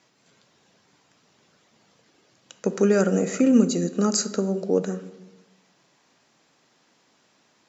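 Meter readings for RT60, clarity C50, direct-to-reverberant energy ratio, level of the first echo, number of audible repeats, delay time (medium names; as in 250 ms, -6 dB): 1.0 s, 13.5 dB, 10.5 dB, no echo, no echo, no echo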